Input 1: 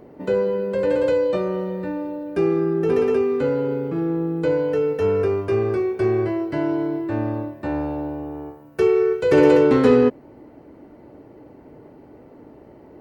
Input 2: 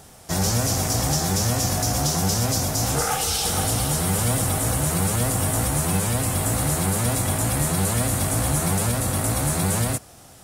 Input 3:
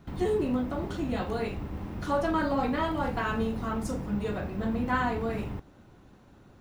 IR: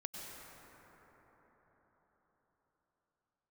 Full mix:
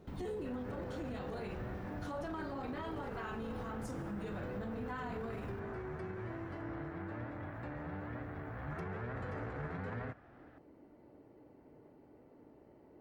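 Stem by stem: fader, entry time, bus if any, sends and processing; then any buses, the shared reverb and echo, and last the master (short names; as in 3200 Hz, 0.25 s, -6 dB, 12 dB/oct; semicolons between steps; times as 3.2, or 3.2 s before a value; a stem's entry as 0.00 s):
-15.0 dB, 0.00 s, no send, compressor 3:1, threshold -30 dBFS, peak gain reduction 15 dB
8.54 s -13 dB -> 8.82 s -4 dB, 0.15 s, no send, ladder low-pass 2000 Hz, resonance 50%
-9.5 dB, 0.00 s, send -8 dB, dry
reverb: on, RT60 5.0 s, pre-delay 87 ms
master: limiter -33.5 dBFS, peak gain reduction 10.5 dB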